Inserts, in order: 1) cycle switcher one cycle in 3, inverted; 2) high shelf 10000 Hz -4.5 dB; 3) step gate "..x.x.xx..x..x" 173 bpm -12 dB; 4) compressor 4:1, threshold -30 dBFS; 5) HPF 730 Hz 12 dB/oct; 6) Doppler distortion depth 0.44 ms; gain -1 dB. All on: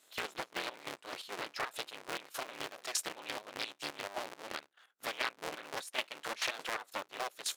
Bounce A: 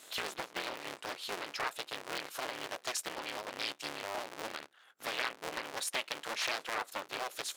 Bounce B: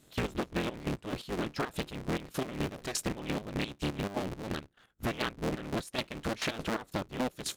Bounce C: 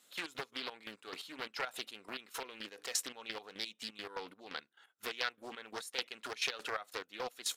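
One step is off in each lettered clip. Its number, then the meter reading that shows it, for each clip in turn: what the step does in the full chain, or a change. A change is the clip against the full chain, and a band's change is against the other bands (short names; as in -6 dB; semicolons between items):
3, crest factor change -3.5 dB; 5, 125 Hz band +23.0 dB; 1, crest factor change +1.5 dB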